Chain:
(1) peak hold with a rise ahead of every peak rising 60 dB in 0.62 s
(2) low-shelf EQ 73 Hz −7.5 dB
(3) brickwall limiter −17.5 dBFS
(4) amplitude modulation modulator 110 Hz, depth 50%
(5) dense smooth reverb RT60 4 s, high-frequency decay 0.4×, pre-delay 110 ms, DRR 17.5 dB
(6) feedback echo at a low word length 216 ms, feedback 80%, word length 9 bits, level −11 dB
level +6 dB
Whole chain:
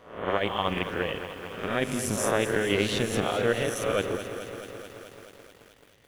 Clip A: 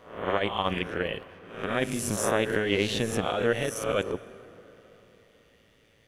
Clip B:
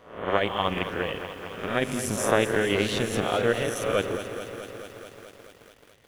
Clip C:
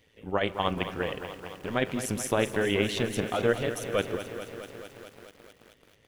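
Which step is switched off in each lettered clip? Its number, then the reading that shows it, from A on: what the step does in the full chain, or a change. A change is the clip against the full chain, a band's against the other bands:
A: 6, change in momentary loudness spread −4 LU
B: 3, change in crest factor +3.5 dB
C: 1, 8 kHz band −2.0 dB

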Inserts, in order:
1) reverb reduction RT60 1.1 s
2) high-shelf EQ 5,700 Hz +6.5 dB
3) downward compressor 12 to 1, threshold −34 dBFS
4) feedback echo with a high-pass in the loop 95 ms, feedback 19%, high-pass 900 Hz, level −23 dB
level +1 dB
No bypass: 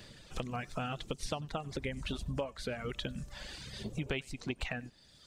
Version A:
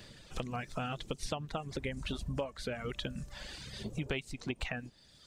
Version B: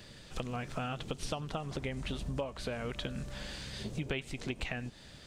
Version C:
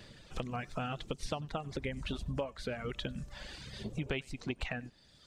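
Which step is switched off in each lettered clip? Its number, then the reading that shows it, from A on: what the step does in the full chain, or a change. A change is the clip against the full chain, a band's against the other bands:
4, echo-to-direct ratio −24.5 dB to none audible
1, change in momentary loudness spread −2 LU
2, 8 kHz band −3.5 dB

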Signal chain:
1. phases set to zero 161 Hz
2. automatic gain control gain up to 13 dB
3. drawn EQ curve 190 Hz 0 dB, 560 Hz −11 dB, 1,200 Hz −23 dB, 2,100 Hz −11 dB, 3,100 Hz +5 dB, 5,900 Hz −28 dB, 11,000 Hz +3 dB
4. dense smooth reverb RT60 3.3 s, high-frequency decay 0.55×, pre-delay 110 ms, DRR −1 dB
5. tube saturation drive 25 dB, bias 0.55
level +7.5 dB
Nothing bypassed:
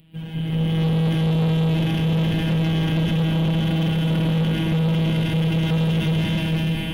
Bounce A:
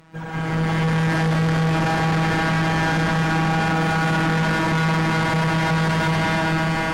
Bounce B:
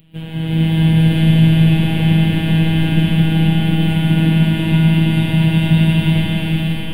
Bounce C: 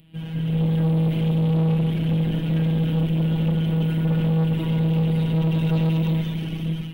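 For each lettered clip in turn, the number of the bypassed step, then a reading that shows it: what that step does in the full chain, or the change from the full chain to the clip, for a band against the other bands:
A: 3, 1 kHz band +13.5 dB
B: 5, change in crest factor +6.5 dB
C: 4, change in momentary loudness spread +2 LU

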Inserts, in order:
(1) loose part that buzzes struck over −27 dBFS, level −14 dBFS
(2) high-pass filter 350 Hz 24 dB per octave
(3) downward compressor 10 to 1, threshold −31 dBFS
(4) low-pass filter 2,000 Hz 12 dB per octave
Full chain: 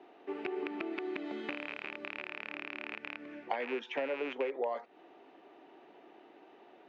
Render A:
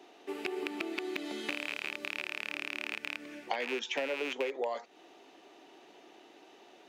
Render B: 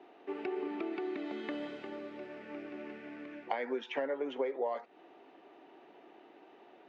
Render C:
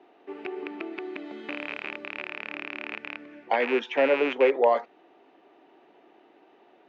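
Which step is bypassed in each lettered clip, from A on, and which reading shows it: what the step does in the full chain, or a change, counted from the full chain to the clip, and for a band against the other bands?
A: 4, 4 kHz band +8.5 dB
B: 1, 2 kHz band −5.5 dB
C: 3, average gain reduction 5.5 dB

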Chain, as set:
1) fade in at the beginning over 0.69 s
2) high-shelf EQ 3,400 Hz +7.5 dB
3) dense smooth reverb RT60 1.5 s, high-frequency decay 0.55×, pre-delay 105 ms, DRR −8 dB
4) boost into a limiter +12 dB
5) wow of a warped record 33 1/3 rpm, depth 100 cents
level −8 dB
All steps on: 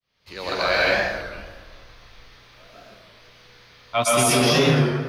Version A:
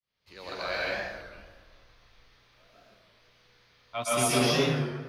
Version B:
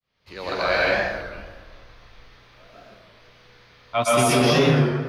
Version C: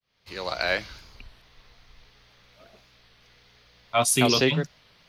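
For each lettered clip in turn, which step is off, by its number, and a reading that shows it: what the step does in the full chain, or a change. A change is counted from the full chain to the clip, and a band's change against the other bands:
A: 4, change in crest factor +5.0 dB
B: 2, 8 kHz band −5.5 dB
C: 3, change in crest factor +5.5 dB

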